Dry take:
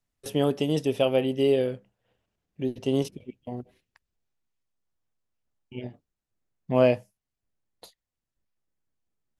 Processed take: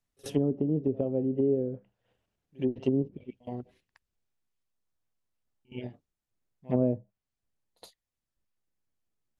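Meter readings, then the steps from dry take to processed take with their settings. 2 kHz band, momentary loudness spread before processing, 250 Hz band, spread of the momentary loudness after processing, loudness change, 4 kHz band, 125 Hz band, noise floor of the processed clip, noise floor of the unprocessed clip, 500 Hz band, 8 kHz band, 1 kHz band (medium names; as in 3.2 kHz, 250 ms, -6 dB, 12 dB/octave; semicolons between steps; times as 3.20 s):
-17.0 dB, 18 LU, -0.5 dB, 15 LU, -4.5 dB, under -15 dB, -1.5 dB, under -85 dBFS, under -85 dBFS, -6.0 dB, no reading, -12.0 dB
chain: pre-echo 68 ms -23 dB; dynamic bell 320 Hz, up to +3 dB, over -31 dBFS, Q 0.93; low-pass that closes with the level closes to 330 Hz, closed at -19.5 dBFS; trim -2 dB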